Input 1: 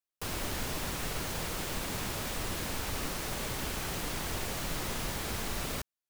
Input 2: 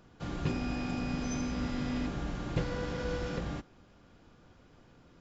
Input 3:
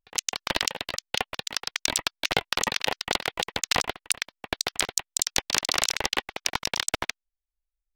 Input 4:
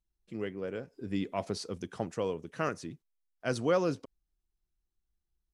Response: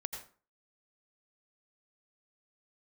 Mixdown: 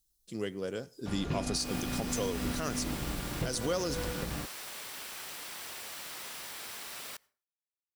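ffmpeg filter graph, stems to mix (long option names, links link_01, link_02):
-filter_complex "[0:a]highpass=frequency=1400:poles=1,bandreject=frequency=6600:width=16,adelay=1350,volume=-4dB,asplit=2[link_01][link_02];[link_02]volume=-21.5dB[link_03];[1:a]aeval=exprs='sgn(val(0))*max(abs(val(0))-0.00422,0)':channel_layout=same,adelay=850,volume=1dB[link_04];[3:a]aexciter=amount=3.7:drive=8.4:freq=3500,volume=0dB,asplit=2[link_05][link_06];[link_06]volume=-20.5dB[link_07];[4:a]atrim=start_sample=2205[link_08];[link_03][link_07]amix=inputs=2:normalize=0[link_09];[link_09][link_08]afir=irnorm=-1:irlink=0[link_10];[link_01][link_04][link_05][link_10]amix=inputs=4:normalize=0,alimiter=limit=-22dB:level=0:latency=1:release=123"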